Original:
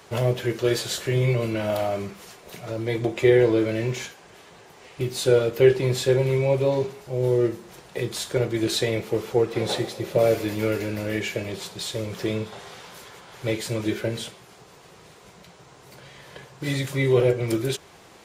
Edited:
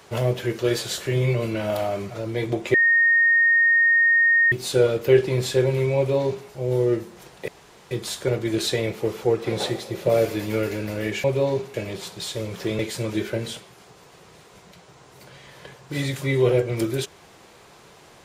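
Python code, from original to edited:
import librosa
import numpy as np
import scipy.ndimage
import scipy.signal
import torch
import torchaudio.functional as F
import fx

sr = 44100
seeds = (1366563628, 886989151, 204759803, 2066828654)

y = fx.edit(x, sr, fx.cut(start_s=2.1, length_s=0.52),
    fx.bleep(start_s=3.26, length_s=1.78, hz=1850.0, db=-14.0),
    fx.duplicate(start_s=6.49, length_s=0.5, to_s=11.33),
    fx.insert_room_tone(at_s=8.0, length_s=0.43),
    fx.cut(start_s=12.38, length_s=1.12), tone=tone)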